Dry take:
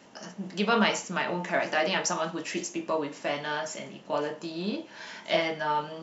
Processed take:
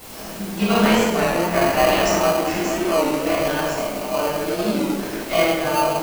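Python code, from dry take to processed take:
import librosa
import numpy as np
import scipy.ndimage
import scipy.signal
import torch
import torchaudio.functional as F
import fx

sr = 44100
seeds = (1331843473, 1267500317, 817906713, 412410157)

p1 = fx.low_shelf(x, sr, hz=170.0, db=-6.5)
p2 = p1 + fx.echo_stepped(p1, sr, ms=231, hz=380.0, octaves=0.7, feedback_pct=70, wet_db=-2, dry=0)
p3 = fx.dmg_noise_colour(p2, sr, seeds[0], colour='white', level_db=-42.0)
p4 = fx.room_shoebox(p3, sr, seeds[1], volume_m3=610.0, walls='mixed', distance_m=6.8)
p5 = fx.sample_hold(p4, sr, seeds[2], rate_hz=1800.0, jitter_pct=0)
p6 = p4 + F.gain(torch.from_numpy(p5), -3.0).numpy()
p7 = fx.record_warp(p6, sr, rpm=33.33, depth_cents=100.0)
y = F.gain(torch.from_numpy(p7), -8.0).numpy()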